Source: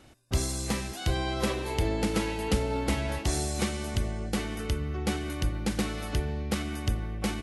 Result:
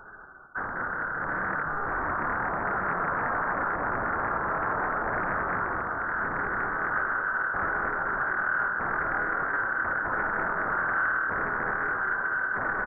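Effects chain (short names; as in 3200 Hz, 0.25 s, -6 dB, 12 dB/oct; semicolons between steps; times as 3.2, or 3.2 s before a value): HPF 89 Hz 24 dB/oct; notches 60/120/180/240/300/360/420/480/540 Hz; pitch shift -1 st; sine folder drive 9 dB, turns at -24 dBFS; frequency-shifting echo 0.122 s, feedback 43%, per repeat +67 Hz, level -3.5 dB; inverted band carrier 2800 Hz; speed mistake 78 rpm record played at 45 rpm; Doppler distortion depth 0.36 ms; gain -2.5 dB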